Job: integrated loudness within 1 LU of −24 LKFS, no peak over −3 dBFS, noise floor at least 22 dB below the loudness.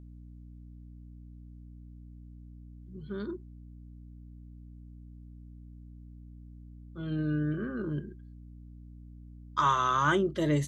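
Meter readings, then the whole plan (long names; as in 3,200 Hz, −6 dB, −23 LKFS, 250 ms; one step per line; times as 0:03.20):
mains hum 60 Hz; hum harmonics up to 300 Hz; level of the hum −45 dBFS; integrated loudness −30.5 LKFS; sample peak −13.5 dBFS; target loudness −24.0 LKFS
→ hum removal 60 Hz, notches 5
level +6.5 dB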